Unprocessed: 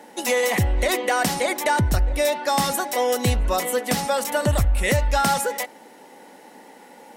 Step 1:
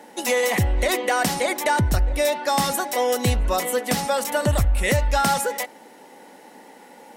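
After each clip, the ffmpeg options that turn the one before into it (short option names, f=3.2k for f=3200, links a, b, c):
-af anull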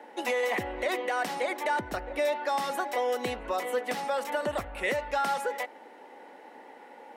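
-filter_complex "[0:a]acrossover=split=260 3000:gain=0.0708 1 0.0794[a][b][c];[a][b][c]amix=inputs=3:normalize=0,acrossover=split=4500[d][e];[d]alimiter=limit=-18dB:level=0:latency=1:release=284[f];[e]acontrast=35[g];[f][g]amix=inputs=2:normalize=0,volume=-2dB"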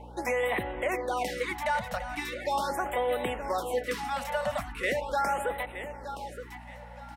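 -af "aeval=exprs='val(0)+0.00501*(sin(2*PI*60*n/s)+sin(2*PI*2*60*n/s)/2+sin(2*PI*3*60*n/s)/3+sin(2*PI*4*60*n/s)/4+sin(2*PI*5*60*n/s)/5)':c=same,aecho=1:1:921|1842|2763:0.299|0.0896|0.0269,afftfilt=real='re*(1-between(b*sr/1024,330*pow(5900/330,0.5+0.5*sin(2*PI*0.4*pts/sr))/1.41,330*pow(5900/330,0.5+0.5*sin(2*PI*0.4*pts/sr))*1.41))':imag='im*(1-between(b*sr/1024,330*pow(5900/330,0.5+0.5*sin(2*PI*0.4*pts/sr))/1.41,330*pow(5900/330,0.5+0.5*sin(2*PI*0.4*pts/sr))*1.41))':win_size=1024:overlap=0.75"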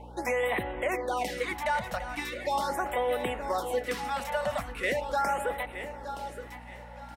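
-af "aecho=1:1:946|1892|2838:0.112|0.046|0.0189"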